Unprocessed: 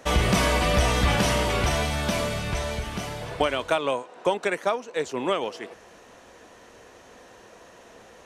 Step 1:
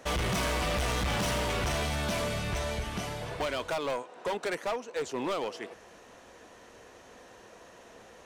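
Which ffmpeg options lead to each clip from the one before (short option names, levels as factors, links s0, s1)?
-af "asoftclip=type=hard:threshold=0.0596,volume=0.708"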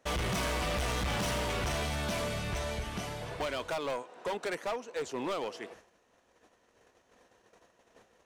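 -af "agate=range=0.2:threshold=0.00316:ratio=16:detection=peak,volume=0.75"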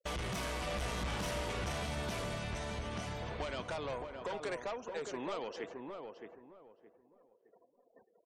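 -filter_complex "[0:a]afftfilt=real='re*gte(hypot(re,im),0.00251)':imag='im*gte(hypot(re,im),0.00251)':win_size=1024:overlap=0.75,acompressor=threshold=0.0126:ratio=3,asplit=2[s0][s1];[s1]adelay=617,lowpass=f=1300:p=1,volume=0.596,asplit=2[s2][s3];[s3]adelay=617,lowpass=f=1300:p=1,volume=0.27,asplit=2[s4][s5];[s5]adelay=617,lowpass=f=1300:p=1,volume=0.27,asplit=2[s6][s7];[s7]adelay=617,lowpass=f=1300:p=1,volume=0.27[s8];[s2][s4][s6][s8]amix=inputs=4:normalize=0[s9];[s0][s9]amix=inputs=2:normalize=0,volume=0.891"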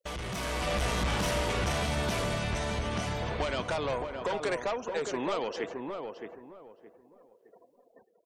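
-af "dynaudnorm=f=110:g=9:m=2.24,volume=1.12"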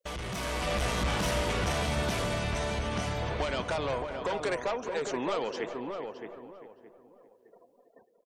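-filter_complex "[0:a]asplit=2[s0][s1];[s1]adelay=396.5,volume=0.251,highshelf=f=4000:g=-8.92[s2];[s0][s2]amix=inputs=2:normalize=0"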